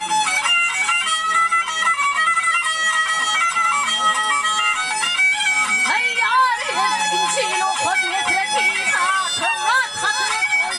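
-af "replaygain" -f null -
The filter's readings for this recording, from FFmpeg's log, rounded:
track_gain = -1.0 dB
track_peak = 0.393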